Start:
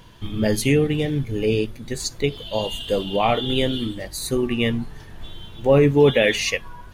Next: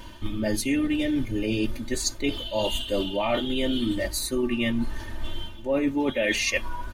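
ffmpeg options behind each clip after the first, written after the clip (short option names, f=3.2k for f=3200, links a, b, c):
-af "aecho=1:1:3.3:0.97,areverse,acompressor=threshold=-25dB:ratio=6,areverse,volume=2.5dB"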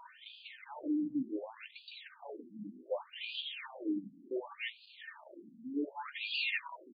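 -af "acrusher=bits=4:mode=log:mix=0:aa=0.000001,asoftclip=type=tanh:threshold=-25.5dB,afftfilt=real='re*between(b*sr/1024,210*pow(3500/210,0.5+0.5*sin(2*PI*0.67*pts/sr))/1.41,210*pow(3500/210,0.5+0.5*sin(2*PI*0.67*pts/sr))*1.41)':imag='im*between(b*sr/1024,210*pow(3500/210,0.5+0.5*sin(2*PI*0.67*pts/sr))/1.41,210*pow(3500/210,0.5+0.5*sin(2*PI*0.67*pts/sr))*1.41)':win_size=1024:overlap=0.75,volume=-2dB"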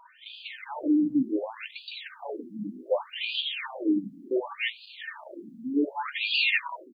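-af "dynaudnorm=f=170:g=3:m=11.5dB,volume=-1dB"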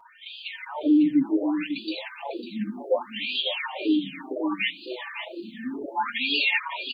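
-filter_complex "[0:a]aecho=1:1:550:0.335,asplit=2[a][b];[b]alimiter=limit=-22dB:level=0:latency=1:release=115,volume=1.5dB[c];[a][c]amix=inputs=2:normalize=0,asplit=2[d][e];[e]adelay=5.1,afreqshift=0.31[f];[d][f]amix=inputs=2:normalize=1"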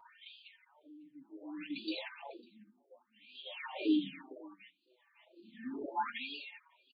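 -af "aresample=11025,aresample=44100,aeval=exprs='val(0)*pow(10,-30*(0.5-0.5*cos(2*PI*0.51*n/s))/20)':c=same,volume=-7dB"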